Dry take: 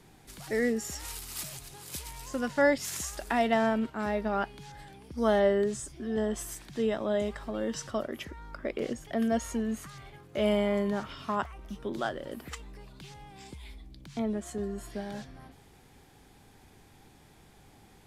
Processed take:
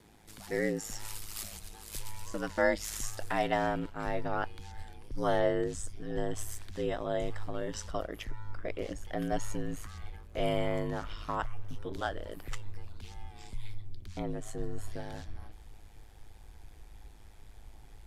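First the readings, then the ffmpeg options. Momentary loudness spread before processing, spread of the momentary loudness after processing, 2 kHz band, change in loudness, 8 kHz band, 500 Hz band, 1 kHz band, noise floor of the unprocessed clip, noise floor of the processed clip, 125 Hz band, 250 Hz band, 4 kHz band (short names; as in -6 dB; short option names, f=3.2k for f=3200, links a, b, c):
21 LU, 18 LU, -3.0 dB, -4.5 dB, -3.0 dB, -4.5 dB, -2.5 dB, -58 dBFS, -52 dBFS, +2.0 dB, -6.5 dB, -3.0 dB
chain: -af "aeval=exprs='val(0)*sin(2*PI*53*n/s)':c=same,asubboost=boost=11:cutoff=55"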